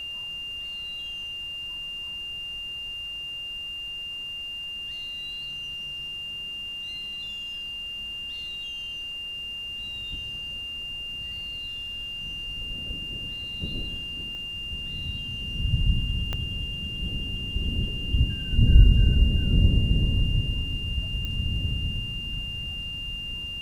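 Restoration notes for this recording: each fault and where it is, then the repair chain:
whistle 2,800 Hz −32 dBFS
0:14.35: click −29 dBFS
0:16.33: click −16 dBFS
0:21.25: click −19 dBFS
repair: click removal
notch filter 2,800 Hz, Q 30

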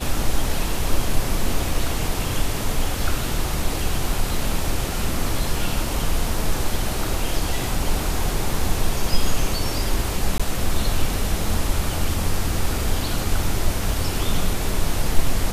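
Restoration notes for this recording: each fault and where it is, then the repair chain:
0:10.38–0:10.40: drop-out 16 ms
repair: repair the gap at 0:10.38, 16 ms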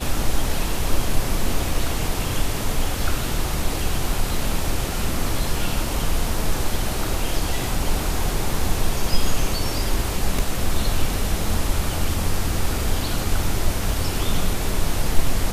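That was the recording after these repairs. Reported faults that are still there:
none of them is left

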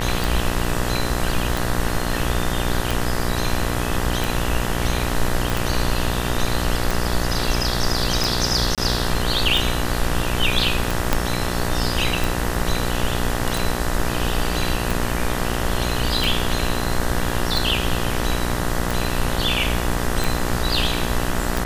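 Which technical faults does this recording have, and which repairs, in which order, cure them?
mains buzz 60 Hz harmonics 33 −25 dBFS
scratch tick 45 rpm
0:05.50: click
0:08.75–0:08.78: drop-out 27 ms
0:11.13: click −2 dBFS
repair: click removal
hum removal 60 Hz, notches 33
repair the gap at 0:08.75, 27 ms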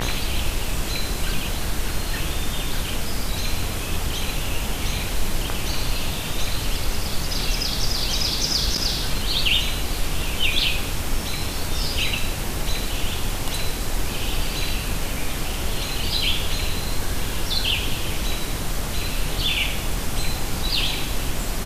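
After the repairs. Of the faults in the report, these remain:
0:11.13: click

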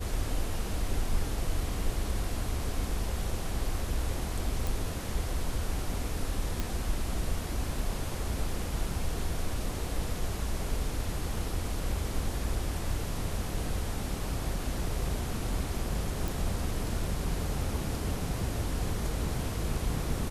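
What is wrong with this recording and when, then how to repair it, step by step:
0:04.67: click
0:06.60: click
0:16.28: click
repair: click removal

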